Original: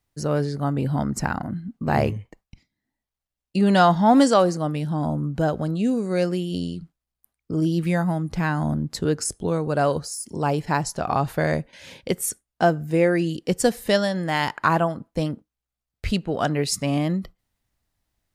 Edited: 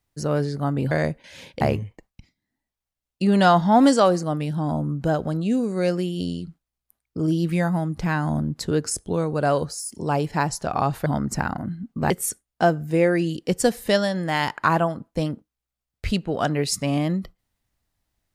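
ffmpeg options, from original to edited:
-filter_complex "[0:a]asplit=5[s0][s1][s2][s3][s4];[s0]atrim=end=0.912[s5];[s1]atrim=start=11.398:end=12.102[s6];[s2]atrim=start=1.948:end=11.402[s7];[s3]atrim=start=0.908:end=1.952[s8];[s4]atrim=start=12.098[s9];[s5][s6]acrossfade=d=0.004:c1=hsin:c2=hsin[s10];[s10][s7]acrossfade=d=0.004:c1=hsin:c2=hsin[s11];[s11][s8]acrossfade=d=0.004:c1=hsin:c2=hsin[s12];[s12][s9]acrossfade=d=0.004:c1=hsin:c2=hsin"

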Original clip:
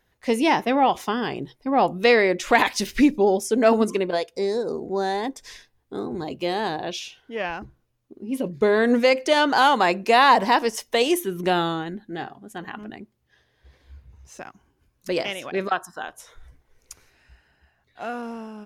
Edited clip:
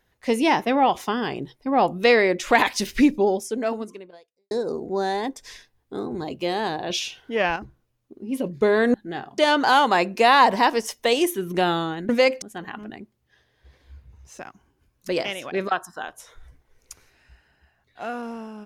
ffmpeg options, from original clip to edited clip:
-filter_complex "[0:a]asplit=8[s0][s1][s2][s3][s4][s5][s6][s7];[s0]atrim=end=4.51,asetpts=PTS-STARTPTS,afade=t=out:st=3.15:d=1.36:c=qua[s8];[s1]atrim=start=4.51:end=6.902,asetpts=PTS-STARTPTS,afade=t=in:d=0.004:c=hsin[s9];[s2]atrim=start=6.898:end=7.562,asetpts=PTS-STARTPTS,volume=2[s10];[s3]atrim=start=7.558:end=8.942[s11];[s4]atrim=start=11.978:end=12.422[s12];[s5]atrim=start=9.268:end=11.982[s13];[s6]atrim=start=8.938:end=9.272[s14];[s7]atrim=start=12.418[s15];[s8][s9]concat=n=2:v=0:a=1[s16];[s16][s10]acrossfade=d=0.004:c1=hsin:c2=hsin[s17];[s17][s11]acrossfade=d=0.004:c1=hsin:c2=hsin[s18];[s18][s12]acrossfade=d=0.004:c1=hsin:c2=hsin[s19];[s19][s13]acrossfade=d=0.004:c1=hsin:c2=hsin[s20];[s20][s14]acrossfade=d=0.004:c1=hsin:c2=hsin[s21];[s21][s15]acrossfade=d=0.004:c1=hsin:c2=hsin"

